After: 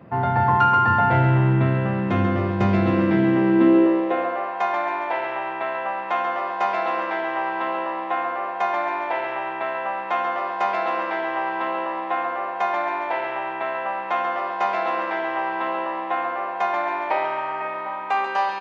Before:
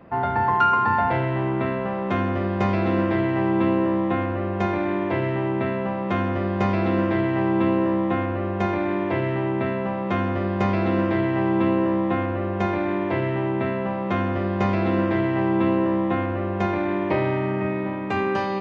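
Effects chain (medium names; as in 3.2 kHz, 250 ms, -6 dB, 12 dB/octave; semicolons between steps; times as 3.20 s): feedback delay 137 ms, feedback 52%, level -7 dB; high-pass sweep 110 Hz -> 810 Hz, 2.91–4.50 s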